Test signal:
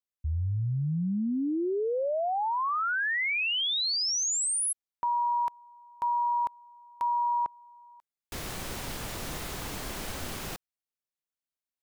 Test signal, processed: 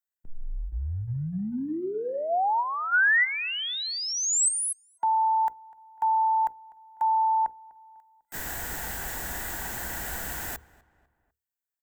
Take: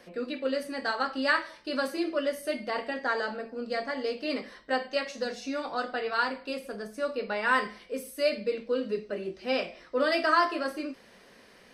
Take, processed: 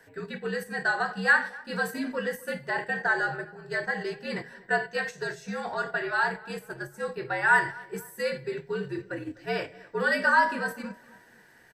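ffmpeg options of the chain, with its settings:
ffmpeg -i in.wav -filter_complex "[0:a]highshelf=frequency=6800:width_type=q:width=1.5:gain=10,bandreject=frequency=60:width_type=h:width=6,bandreject=frequency=120:width_type=h:width=6,bandreject=frequency=180:width_type=h:width=6,bandreject=frequency=240:width_type=h:width=6,bandreject=frequency=300:width_type=h:width=6,bandreject=frequency=360:width_type=h:width=6,bandreject=frequency=420:width_type=h:width=6,bandreject=frequency=480:width_type=h:width=6,bandreject=frequency=540:width_type=h:width=6,bandreject=frequency=600:width_type=h:width=6,asplit=2[link_01][link_02];[link_02]acompressor=threshold=-34dB:ratio=6:attack=0.21:release=32:knee=1:detection=rms,volume=-2dB[link_03];[link_01][link_03]amix=inputs=2:normalize=0,superequalizer=9b=2:11b=3.16:16b=0.355,agate=range=-7dB:threshold=-33dB:ratio=16:release=108:detection=peak,asplit=2[link_04][link_05];[link_05]adelay=249,lowpass=frequency=2400:poles=1,volume=-21dB,asplit=2[link_06][link_07];[link_07]adelay=249,lowpass=frequency=2400:poles=1,volume=0.46,asplit=2[link_08][link_09];[link_09]adelay=249,lowpass=frequency=2400:poles=1,volume=0.46[link_10];[link_06][link_08][link_10]amix=inputs=3:normalize=0[link_11];[link_04][link_11]amix=inputs=2:normalize=0,afreqshift=-72,volume=-4dB" out.wav

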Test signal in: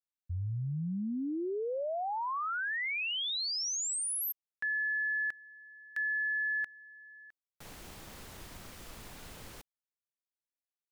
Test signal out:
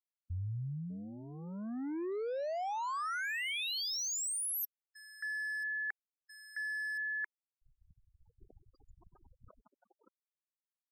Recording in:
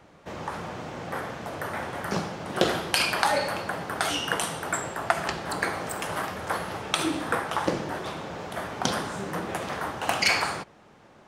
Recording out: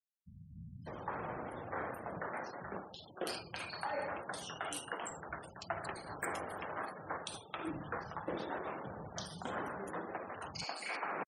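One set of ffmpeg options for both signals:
ffmpeg -i in.wav -filter_complex "[0:a]aeval=exprs='sgn(val(0))*max(abs(val(0))-0.00473,0)':channel_layout=same,areverse,acompressor=threshold=-37dB:ratio=12:attack=11:release=875:knee=1:detection=rms,areverse,acrossover=split=190|2900[link_01][link_02][link_03];[link_03]adelay=330[link_04];[link_02]adelay=600[link_05];[link_01][link_05][link_04]amix=inputs=3:normalize=0,afftfilt=real='re*gte(hypot(re,im),0.00316)':imag='im*gte(hypot(re,im),0.00316)':win_size=1024:overlap=0.75,volume=3.5dB" out.wav

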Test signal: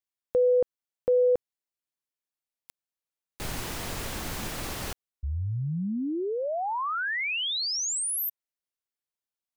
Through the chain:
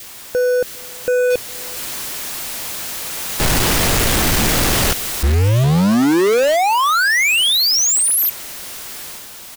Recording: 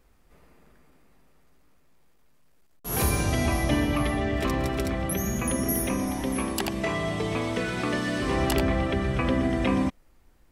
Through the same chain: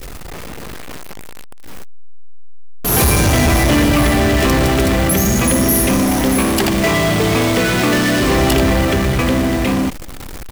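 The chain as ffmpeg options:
ffmpeg -i in.wav -filter_complex "[0:a]aeval=exprs='val(0)+0.5*0.0266*sgn(val(0))':channel_layout=same,adynamicequalizer=threshold=0.00631:dfrequency=970:dqfactor=1.7:tfrequency=970:tqfactor=1.7:attack=5:release=100:ratio=0.375:range=1.5:mode=cutabove:tftype=bell,dynaudnorm=framelen=300:gausssize=13:maxgain=10dB,asoftclip=type=tanh:threshold=-17.5dB,asplit=2[link_01][link_02];[link_02]adelay=408.2,volume=-29dB,highshelf=frequency=4000:gain=-9.18[link_03];[link_01][link_03]amix=inputs=2:normalize=0,acrusher=bits=3:mode=log:mix=0:aa=0.000001,volume=7dB" out.wav

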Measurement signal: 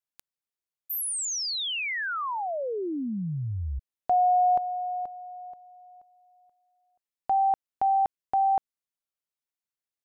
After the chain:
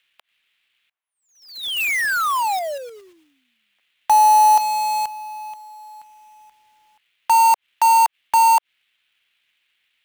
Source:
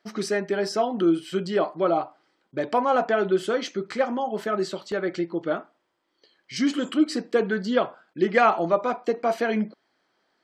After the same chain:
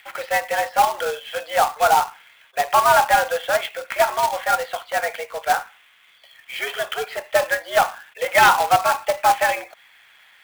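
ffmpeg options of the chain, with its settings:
ffmpeg -i in.wav -filter_complex "[0:a]acrossover=split=1900[link_01][link_02];[link_02]acompressor=mode=upward:threshold=-40dB:ratio=2.5:attack=2.9:release=77:knee=2.83:detection=peak[link_03];[link_01][link_03]amix=inputs=2:normalize=0,highpass=frequency=520:width_type=q:width=0.5412,highpass=frequency=520:width_type=q:width=1.307,lowpass=frequency=3100:width_type=q:width=0.5176,lowpass=frequency=3100:width_type=q:width=0.7071,lowpass=frequency=3100:width_type=q:width=1.932,afreqshift=130,asoftclip=type=tanh:threshold=-13.5dB,acrusher=bits=2:mode=log:mix=0:aa=0.000001,volume=8.5dB" out.wav

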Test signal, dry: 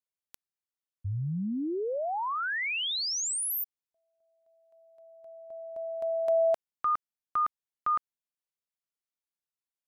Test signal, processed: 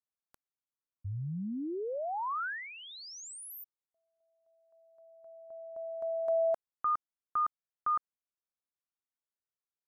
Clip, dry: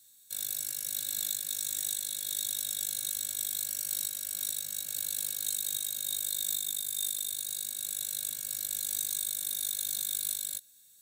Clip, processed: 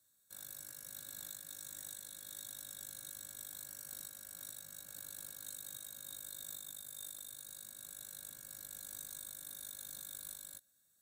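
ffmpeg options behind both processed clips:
ffmpeg -i in.wav -af "highshelf=frequency=1900:width_type=q:width=1.5:gain=-9.5,volume=-5dB" out.wav

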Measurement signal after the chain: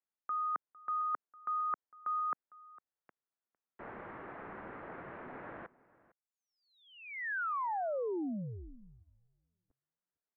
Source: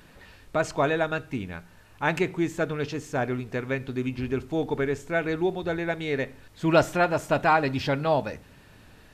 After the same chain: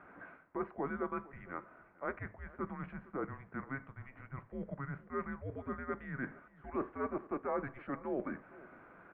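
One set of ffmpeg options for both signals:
ffmpeg -i in.wav -filter_complex "[0:a]areverse,acompressor=threshold=-36dB:ratio=5,areverse,asplit=2[link_01][link_02];[link_02]adelay=454.8,volume=-20dB,highshelf=frequency=4000:gain=-10.2[link_03];[link_01][link_03]amix=inputs=2:normalize=0,highpass=frequency=470:width_type=q:width=0.5412,highpass=frequency=470:width_type=q:width=1.307,lowpass=frequency=2100:width_type=q:width=0.5176,lowpass=frequency=2100:width_type=q:width=0.7071,lowpass=frequency=2100:width_type=q:width=1.932,afreqshift=-270,volume=1.5dB" out.wav

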